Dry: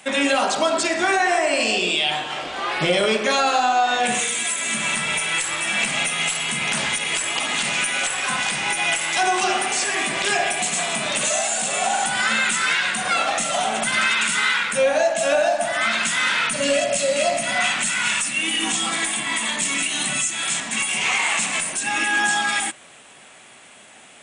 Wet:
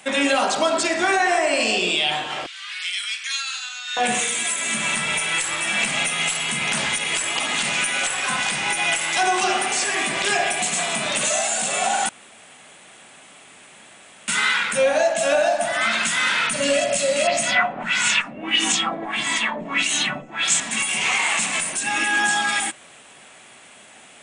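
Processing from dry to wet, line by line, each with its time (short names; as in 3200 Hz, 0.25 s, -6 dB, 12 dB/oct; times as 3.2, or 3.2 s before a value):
2.46–3.97 Bessel high-pass 2600 Hz, order 6
12.09–14.28 room tone
17.27–20.6 LFO low-pass sine 1.6 Hz 540–7900 Hz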